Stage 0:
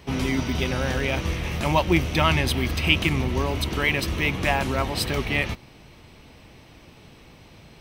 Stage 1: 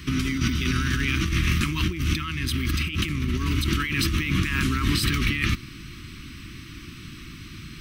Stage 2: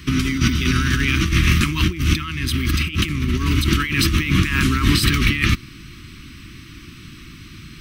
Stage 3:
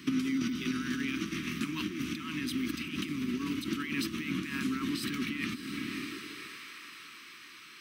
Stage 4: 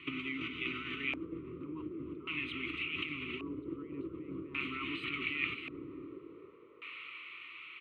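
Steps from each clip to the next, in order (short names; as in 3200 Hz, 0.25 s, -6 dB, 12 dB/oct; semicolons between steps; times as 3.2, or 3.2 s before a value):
Chebyshev band-stop 330–1200 Hz, order 3; bell 870 Hz -6.5 dB 0.24 oct; negative-ratio compressor -30 dBFS, ratio -1; gain +5.5 dB
upward expander 1.5:1, over -33 dBFS; gain +8 dB
diffused feedback echo 0.554 s, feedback 56%, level -12 dB; compressor, threshold -23 dBFS, peak gain reduction 13 dB; high-pass sweep 240 Hz -> 640 Hz, 5.85–6.72; gain -8.5 dB
fixed phaser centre 1100 Hz, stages 8; frequency-shifting echo 0.312 s, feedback 37%, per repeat +50 Hz, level -11 dB; LFO low-pass square 0.44 Hz 620–2500 Hz; gain -2 dB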